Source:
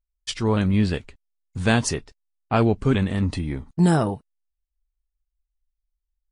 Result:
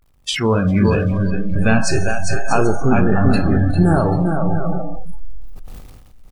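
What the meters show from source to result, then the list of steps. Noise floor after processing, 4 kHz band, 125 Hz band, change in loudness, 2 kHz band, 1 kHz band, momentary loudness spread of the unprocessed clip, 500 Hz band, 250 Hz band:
−46 dBFS, +5.0 dB, +6.5 dB, +5.0 dB, +7.5 dB, +7.5 dB, 12 LU, +7.0 dB, +6.0 dB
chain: converter with a step at zero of −29 dBFS
pitch vibrato 0.91 Hz 72 cents
bass and treble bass −2 dB, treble −6 dB
downward compressor 2.5 to 1, threshold −22 dBFS, peak gain reduction 5.5 dB
bouncing-ball delay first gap 400 ms, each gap 0.6×, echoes 5
hum with harmonics 50 Hz, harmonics 27, −52 dBFS −3 dB per octave
four-comb reverb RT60 2.4 s, combs from 28 ms, DRR 5.5 dB
noise reduction from a noise print of the clip's start 27 dB
level that may fall only so fast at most 38 dB per second
level +7.5 dB

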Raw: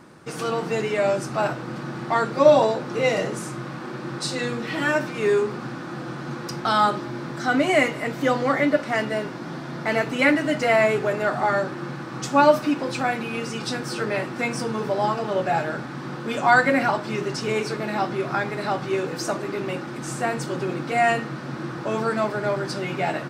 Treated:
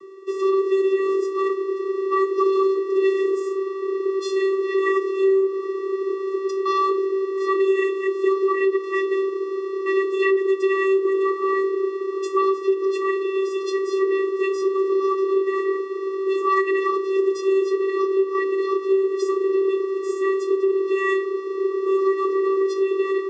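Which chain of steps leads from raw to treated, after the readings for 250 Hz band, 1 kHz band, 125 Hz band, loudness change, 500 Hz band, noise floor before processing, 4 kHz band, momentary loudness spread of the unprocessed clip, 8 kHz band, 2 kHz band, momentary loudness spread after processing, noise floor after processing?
+1.0 dB, −3.0 dB, below −35 dB, +2.0 dB, +4.5 dB, −34 dBFS, −7.5 dB, 14 LU, can't be measured, −5.5 dB, 5 LU, −29 dBFS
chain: channel vocoder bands 16, square 386 Hz
downward compressor 6 to 1, threshold −22 dBFS, peak gain reduction 9.5 dB
level +6 dB

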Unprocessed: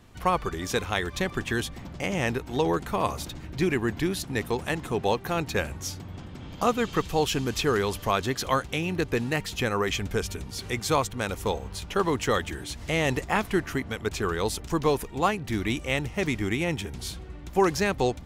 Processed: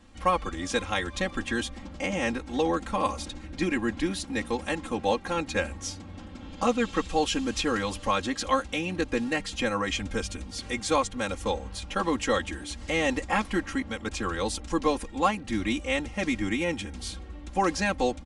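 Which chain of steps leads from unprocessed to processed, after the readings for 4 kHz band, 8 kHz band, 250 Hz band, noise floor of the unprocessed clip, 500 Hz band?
−0.5 dB, −1.0 dB, 0.0 dB, −42 dBFS, −2.0 dB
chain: comb filter 3.7 ms, depth 98%
downsampling to 22,050 Hz
level −3.5 dB

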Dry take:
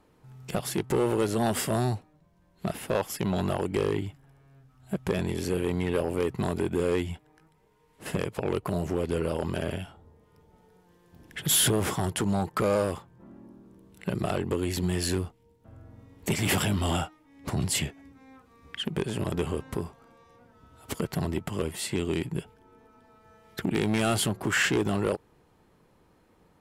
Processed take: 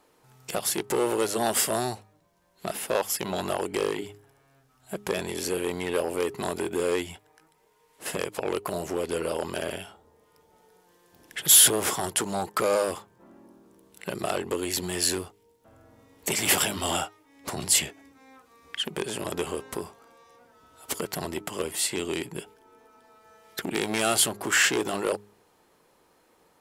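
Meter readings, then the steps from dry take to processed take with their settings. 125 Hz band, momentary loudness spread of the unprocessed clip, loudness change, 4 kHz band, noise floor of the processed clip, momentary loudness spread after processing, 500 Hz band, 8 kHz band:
−10.0 dB, 12 LU, +2.5 dB, +5.0 dB, −64 dBFS, 16 LU, +0.5 dB, +8.0 dB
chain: bass and treble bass −14 dB, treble +6 dB
hum removal 102.8 Hz, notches 4
level +2.5 dB

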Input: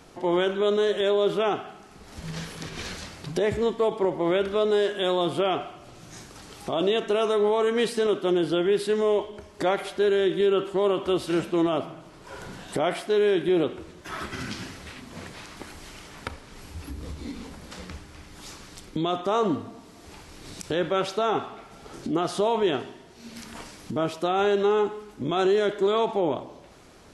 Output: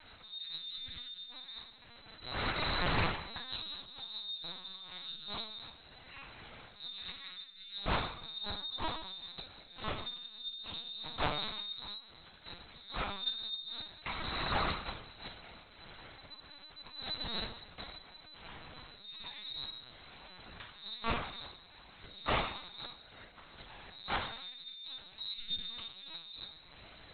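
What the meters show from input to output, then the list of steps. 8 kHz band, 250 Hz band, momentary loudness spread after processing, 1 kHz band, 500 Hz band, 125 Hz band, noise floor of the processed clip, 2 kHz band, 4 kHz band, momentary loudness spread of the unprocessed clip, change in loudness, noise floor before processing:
below −35 dB, −20.0 dB, 17 LU, −11.0 dB, −24.5 dB, −9.0 dB, −57 dBFS, −7.0 dB, −3.0 dB, 20 LU, −14.5 dB, −49 dBFS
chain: neighbouring bands swapped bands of 4,000 Hz
dynamic equaliser 1,100 Hz, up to +4 dB, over −55 dBFS, Q 3.9
output level in coarse steps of 20 dB
volume swells 199 ms
flanger 0.13 Hz, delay 1.3 ms, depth 5.9 ms, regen −20%
high-frequency loss of the air 63 metres
dense smooth reverb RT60 0.71 s, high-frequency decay 1×, DRR 0 dB
linear-prediction vocoder at 8 kHz pitch kept
highs frequency-modulated by the lows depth 0.14 ms
level +17 dB

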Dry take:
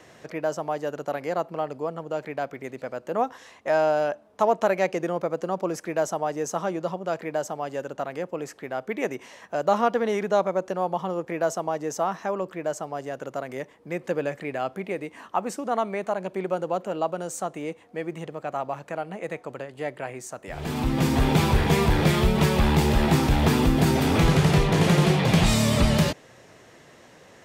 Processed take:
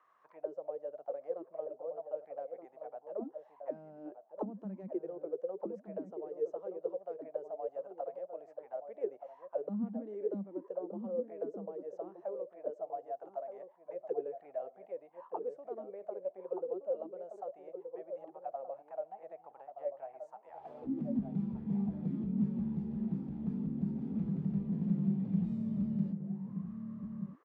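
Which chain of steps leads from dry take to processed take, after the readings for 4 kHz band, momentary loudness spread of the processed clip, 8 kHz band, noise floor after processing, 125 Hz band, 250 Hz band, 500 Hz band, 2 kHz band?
below −40 dB, 12 LU, below −40 dB, −64 dBFS, −16.5 dB, −10.5 dB, −13.0 dB, below −35 dB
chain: envelope filter 200–1,200 Hz, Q 14, down, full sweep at −17.5 dBFS
slap from a distant wall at 210 metres, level −7 dB
level −1 dB

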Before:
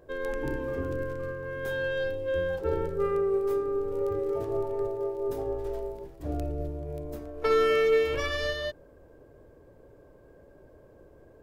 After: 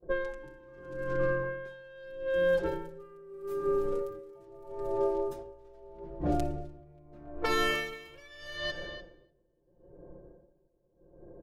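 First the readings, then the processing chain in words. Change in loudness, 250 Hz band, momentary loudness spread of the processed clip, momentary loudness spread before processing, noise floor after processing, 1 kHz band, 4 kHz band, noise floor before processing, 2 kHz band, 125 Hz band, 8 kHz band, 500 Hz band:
−3.0 dB, −2.0 dB, 21 LU, 12 LU, −71 dBFS, −2.0 dB, −1.0 dB, −55 dBFS, −2.0 dB, −4.5 dB, can't be measured, −5.0 dB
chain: low-pass that shuts in the quiet parts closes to 500 Hz, open at −25.5 dBFS
downward expander −51 dBFS
high-shelf EQ 5,100 Hz +6 dB
comb filter 5.7 ms, depth 82%
downward compressor 4 to 1, threshold −32 dBFS, peak gain reduction 10 dB
hard clipping −25 dBFS, distortion −44 dB
feedback echo with a low-pass in the loop 297 ms, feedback 22%, low-pass 4,200 Hz, level −14 dB
tremolo with a sine in dB 0.79 Hz, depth 26 dB
level +7.5 dB

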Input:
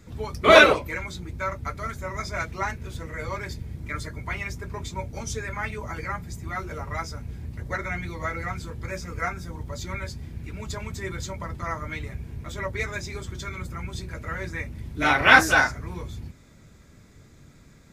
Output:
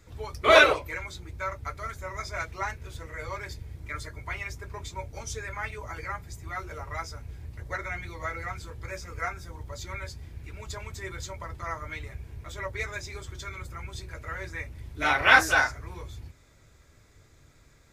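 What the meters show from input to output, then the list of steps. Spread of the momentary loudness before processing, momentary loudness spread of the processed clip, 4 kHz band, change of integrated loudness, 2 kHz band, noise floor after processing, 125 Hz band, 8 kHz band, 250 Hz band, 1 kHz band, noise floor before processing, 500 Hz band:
18 LU, 19 LU, −3.0 dB, −3.0 dB, −3.0 dB, −58 dBFS, −6.0 dB, −3.0 dB, −9.5 dB, −3.5 dB, −52 dBFS, −4.0 dB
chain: parametric band 200 Hz −13 dB 0.98 octaves
level −3 dB

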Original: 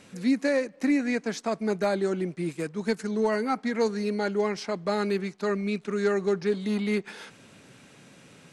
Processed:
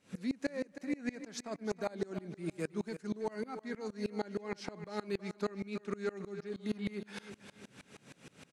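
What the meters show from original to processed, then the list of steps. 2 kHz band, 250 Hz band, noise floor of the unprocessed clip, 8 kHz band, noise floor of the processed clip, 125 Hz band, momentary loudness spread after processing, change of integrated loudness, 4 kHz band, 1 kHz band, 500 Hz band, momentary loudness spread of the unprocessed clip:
−12.5 dB, −11.5 dB, −54 dBFS, −9.0 dB, −67 dBFS, −9.5 dB, 15 LU, −12.0 dB, −10.5 dB, −13.0 dB, −12.5 dB, 5 LU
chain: downward compressor, threshold −31 dBFS, peak gain reduction 11.5 dB
on a send: repeating echo 324 ms, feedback 39%, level −12 dB
on the sum: tremolo with a ramp in dB swelling 6.4 Hz, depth 26 dB
level +3 dB

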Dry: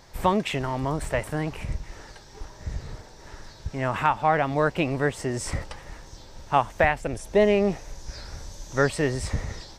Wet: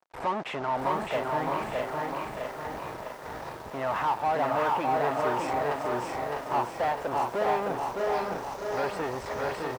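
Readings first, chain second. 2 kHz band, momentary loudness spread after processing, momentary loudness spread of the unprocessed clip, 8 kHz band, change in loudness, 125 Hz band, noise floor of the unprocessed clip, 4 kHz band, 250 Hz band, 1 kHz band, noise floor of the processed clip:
−5.0 dB, 10 LU, 21 LU, −9.5 dB, −4.0 dB, −11.5 dB, −47 dBFS, −4.5 dB, −7.5 dB, +0.5 dB, −41 dBFS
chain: in parallel at −0.5 dB: downward compressor, threshold −30 dBFS, peak gain reduction 15 dB
on the sum: fuzz pedal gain 29 dB, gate −38 dBFS
resonant band-pass 810 Hz, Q 1.2
repeating echo 611 ms, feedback 28%, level −3 dB
feedback echo at a low word length 652 ms, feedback 55%, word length 7 bits, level −4.5 dB
level −8.5 dB

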